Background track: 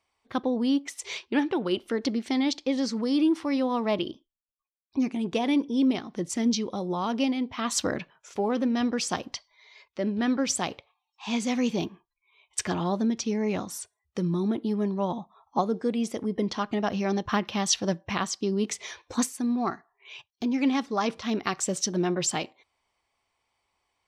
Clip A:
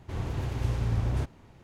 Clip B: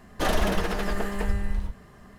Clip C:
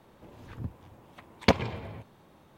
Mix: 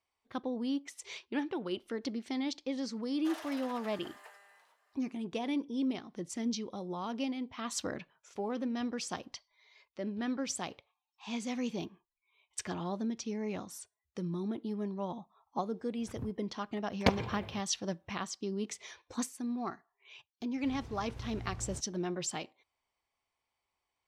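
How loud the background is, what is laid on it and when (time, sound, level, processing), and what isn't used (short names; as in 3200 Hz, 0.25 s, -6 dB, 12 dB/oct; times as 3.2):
background track -9.5 dB
3.05 add B -17 dB + HPF 650 Hz 24 dB/oct
15.58 add C -5.5 dB + gate -48 dBFS, range -17 dB
20.55 add A -15.5 dB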